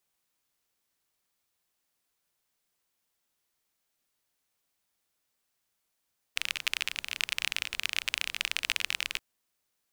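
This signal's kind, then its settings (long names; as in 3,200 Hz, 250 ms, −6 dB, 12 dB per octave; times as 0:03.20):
rain-like ticks over hiss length 2.83 s, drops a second 29, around 2,600 Hz, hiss −23.5 dB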